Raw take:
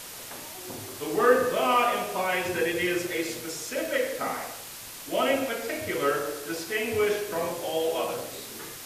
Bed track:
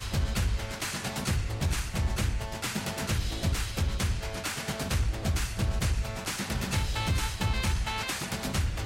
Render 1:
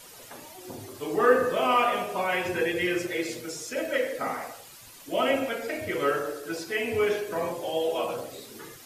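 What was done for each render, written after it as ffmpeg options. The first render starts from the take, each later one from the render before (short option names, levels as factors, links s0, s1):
-af "afftdn=nr=10:nf=-42"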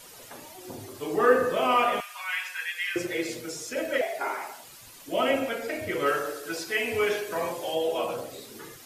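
-filter_complex "[0:a]asettb=1/sr,asplit=3[s0][s1][s2];[s0]atrim=end=2.004[s3];[s1]atrim=start=2:end=2.96,asetpts=PTS-STARTPTS,afade=t=in:d=0.004:c=qsin,afade=t=out:st=0.956:d=0.004:c=qsin,highpass=f=1300:w=0.5412,highpass=f=1300:w=1.3066[s4];[s2]atrim=start=2.956[s5];[s3][s4]acrossfade=d=0.004:c1=hsin:c2=qsin[s6];[s6][s5]acrossfade=d=0.004:c1=qsin:c2=hsin,asettb=1/sr,asplit=3[s7][s8][s9];[s7]atrim=end=4.014[s10];[s8]atrim=start=4.01:end=4.64,asetpts=PTS-STARTPTS,afade=t=in:d=0.004:c=qsin,afade=t=out:st=0.626:d=0.004:c=qsin,afreqshift=140[s11];[s9]atrim=start=4.636[s12];[s10][s11]acrossfade=d=0.004:c1=hsin:c2=qsin[s13];[s13][s12]acrossfade=d=0.004:c1=qsin:c2=hsin,asettb=1/sr,asplit=3[s14][s15][s16];[s14]atrim=end=6.064[s17];[s15]atrim=start=6.06:end=7.75,asetpts=PTS-STARTPTS,afade=t=in:d=0.004:c=qsin,afade=t=out:st=1.686:d=0.004:c=qsin,tiltshelf=f=660:g=-3.5[s18];[s16]atrim=start=7.746[s19];[s17][s18]acrossfade=d=0.004:c1=hsin:c2=qsin[s20];[s20][s19]acrossfade=d=0.004:c1=qsin:c2=hsin"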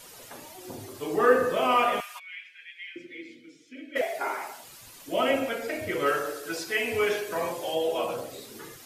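-filter_complex "[0:a]asplit=3[s0][s1][s2];[s0]afade=t=out:st=2.18:d=0.02[s3];[s1]asplit=3[s4][s5][s6];[s4]bandpass=f=270:t=q:w=8,volume=1[s7];[s5]bandpass=f=2290:t=q:w=8,volume=0.501[s8];[s6]bandpass=f=3010:t=q:w=8,volume=0.355[s9];[s7][s8][s9]amix=inputs=3:normalize=0,afade=t=in:st=2.18:d=0.02,afade=t=out:st=3.95:d=0.02[s10];[s2]afade=t=in:st=3.95:d=0.02[s11];[s3][s10][s11]amix=inputs=3:normalize=0"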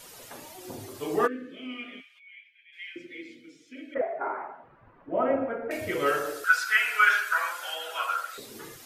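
-filter_complex "[0:a]asplit=3[s0][s1][s2];[s0]afade=t=out:st=1.26:d=0.02[s3];[s1]asplit=3[s4][s5][s6];[s4]bandpass=f=270:t=q:w=8,volume=1[s7];[s5]bandpass=f=2290:t=q:w=8,volume=0.501[s8];[s6]bandpass=f=3010:t=q:w=8,volume=0.355[s9];[s7][s8][s9]amix=inputs=3:normalize=0,afade=t=in:st=1.26:d=0.02,afade=t=out:st=2.72:d=0.02[s10];[s2]afade=t=in:st=2.72:d=0.02[s11];[s3][s10][s11]amix=inputs=3:normalize=0,asettb=1/sr,asplit=3[s12][s13][s14];[s12]atrim=end=3.944[s15];[s13]atrim=start=3.94:end=5.71,asetpts=PTS-STARTPTS,afade=t=in:d=0.004:c=qsin,afade=t=out:st=1.766:d=0.004:c=qsin,lowpass=f=1500:w=0.5412,lowpass=f=1500:w=1.3066[s16];[s14]atrim=start=5.706[s17];[s15][s16]acrossfade=d=0.004:c1=hsin:c2=qsin[s18];[s18][s17]acrossfade=d=0.004:c1=qsin:c2=hsin,asettb=1/sr,asplit=3[s19][s20][s21];[s19]atrim=end=6.444[s22];[s20]atrim=start=6.44:end=8.38,asetpts=PTS-STARTPTS,afade=t=in:d=0.004:c=qsin,afade=t=out:st=1.936:d=0.004:c=qsin,highpass=f=1400:t=q:w=16[s23];[s21]atrim=start=8.376[s24];[s22][s23]acrossfade=d=0.004:c1=hsin:c2=qsin[s25];[s25][s24]acrossfade=d=0.004:c1=qsin:c2=hsin"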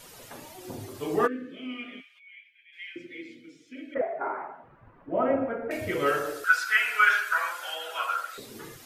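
-af "bass=f=250:g=4,treble=f=4000:g=-2"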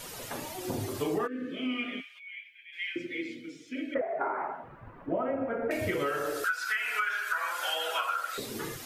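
-filter_complex "[0:a]asplit=2[s0][s1];[s1]alimiter=limit=0.112:level=0:latency=1:release=139,volume=1[s2];[s0][s2]amix=inputs=2:normalize=0,acompressor=threshold=0.0447:ratio=16"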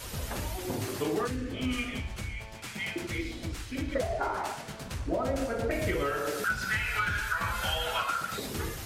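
-filter_complex "[1:a]volume=0.355[s0];[0:a][s0]amix=inputs=2:normalize=0"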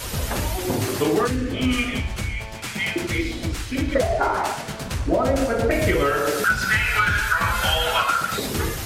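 -af "volume=3.16"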